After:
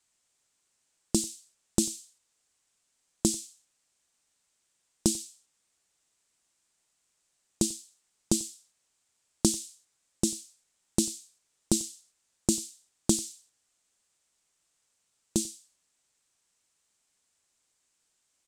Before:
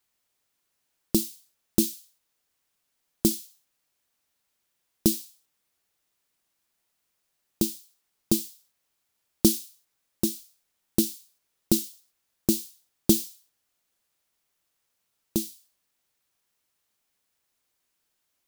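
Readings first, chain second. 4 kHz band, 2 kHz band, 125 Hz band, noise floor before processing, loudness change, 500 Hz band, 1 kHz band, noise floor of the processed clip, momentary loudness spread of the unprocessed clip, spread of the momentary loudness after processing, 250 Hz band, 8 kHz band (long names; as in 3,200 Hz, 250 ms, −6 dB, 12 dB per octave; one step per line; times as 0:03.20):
−1.0 dB, −2.0 dB, −2.0 dB, −78 dBFS, −3.5 dB, −3.5 dB, +2.5 dB, −76 dBFS, 17 LU, 14 LU, −4.0 dB, +2.0 dB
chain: downward compressor 2.5 to 1, threshold −22 dBFS, peak gain reduction 6.5 dB
low-pass with resonance 7,900 Hz, resonance Q 2.9
on a send: single-tap delay 94 ms −23 dB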